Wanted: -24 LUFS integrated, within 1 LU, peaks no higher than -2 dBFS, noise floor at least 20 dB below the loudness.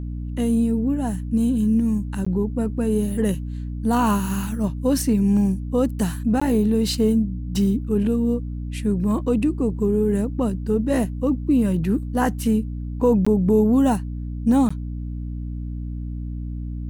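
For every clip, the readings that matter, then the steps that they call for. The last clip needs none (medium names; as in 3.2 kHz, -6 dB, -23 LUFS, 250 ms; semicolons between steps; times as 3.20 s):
dropouts 4; longest dropout 15 ms; hum 60 Hz; highest harmonic 300 Hz; hum level -26 dBFS; loudness -22.0 LUFS; peak level -7.5 dBFS; loudness target -24.0 LUFS
-> interpolate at 2.25/6.40/13.25/14.69 s, 15 ms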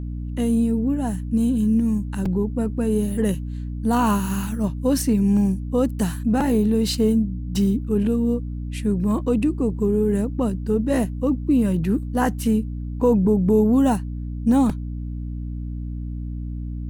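dropouts 0; hum 60 Hz; highest harmonic 300 Hz; hum level -26 dBFS
-> de-hum 60 Hz, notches 5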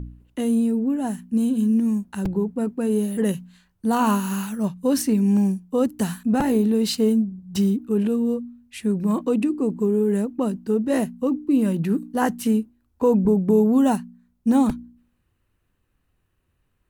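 hum not found; loudness -22.0 LUFS; peak level -8.0 dBFS; loudness target -24.0 LUFS
-> trim -2 dB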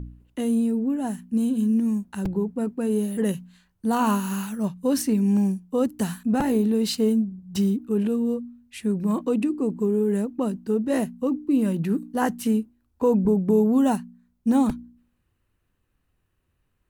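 loudness -24.0 LUFS; peak level -10.0 dBFS; noise floor -72 dBFS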